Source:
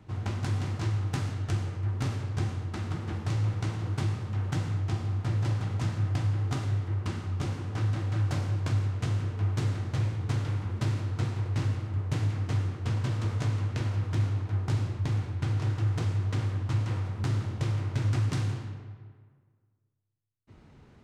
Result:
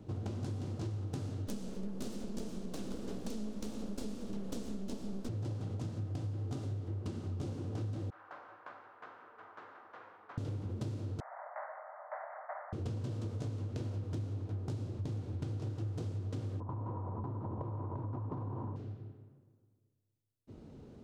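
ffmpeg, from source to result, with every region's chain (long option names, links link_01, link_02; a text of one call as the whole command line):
ffmpeg -i in.wav -filter_complex "[0:a]asettb=1/sr,asplit=3[link_01][link_02][link_03];[link_01]atrim=end=1.474[link_04];[link_02]atrim=start=1.47:end=5.29,asetpts=PTS-STARTPTS,afade=type=in:duration=0.004:curve=qsin,afade=type=out:start_time=3.816:duration=0.004:curve=qsin,highshelf=frequency=3300:gain=10.5,aeval=exprs='abs(val(0))':channel_layout=same[link_05];[link_03]atrim=start=5.286[link_06];[link_04][link_05]acrossfade=duration=0.004:curve1=hsin:curve2=qsin[link_07];[link_07][link_06]acrossfade=duration=0.004:curve1=qsin:curve2=hsin,asettb=1/sr,asplit=3[link_08][link_09][link_10];[link_08]atrim=end=8.104[link_11];[link_09]atrim=start=8.1:end=10.38,asetpts=PTS-STARTPTS,afade=type=in:duration=0.004:curve=qsin,afade=type=out:start_time=2.276:duration=0.004:curve=qsin,asuperpass=centerf=1300:order=4:qfactor=1.4,aecho=1:1:360:0.422,atrim=end_sample=100548[link_12];[link_10]atrim=start=10.376[link_13];[link_11][link_12]acrossfade=duration=0.004:curve1=hsin:curve2=qsin[link_14];[link_14][link_13]acrossfade=duration=0.004:curve1=qsin:curve2=hsin,asettb=1/sr,asplit=3[link_15][link_16][link_17];[link_15]atrim=end=11.204[link_18];[link_16]atrim=start=11.2:end=12.73,asetpts=PTS-STARTPTS,afade=type=in:duration=0.004:curve=qsin,afade=type=out:start_time=1.526:duration=0.004:curve=qsin,asuperpass=centerf=1100:order=20:qfactor=0.77,acontrast=45[link_19];[link_17]atrim=start=12.726[link_20];[link_18][link_19]acrossfade=duration=0.004:curve1=hsin:curve2=qsin[link_21];[link_21][link_20]acrossfade=duration=0.004:curve1=qsin:curve2=hsin,asettb=1/sr,asplit=3[link_22][link_23][link_24];[link_22]atrim=end=16.604[link_25];[link_23]atrim=start=16.6:end=18.76,asetpts=PTS-STARTPTS,afade=type=in:duration=0.004:curve=qsin,afade=type=out:start_time=2.156:duration=0.004:curve=qsin,acompressor=threshold=-33dB:ratio=6:attack=3.2:release=140:knee=1:detection=peak,lowpass=frequency=990:width_type=q:width=9.3[link_26];[link_24]atrim=start=18.756[link_27];[link_25][link_26]acrossfade=duration=0.004:curve1=hsin:curve2=qsin[link_28];[link_28][link_27]acrossfade=duration=0.004:curve1=qsin:curve2=hsin,equalizer=frequency=250:width_type=o:width=1:gain=6,equalizer=frequency=500:width_type=o:width=1:gain=7,equalizer=frequency=1000:width_type=o:width=1:gain=-4,equalizer=frequency=2000:width_type=o:width=1:gain=-9,acompressor=threshold=-35dB:ratio=6,volume=-1dB" out.wav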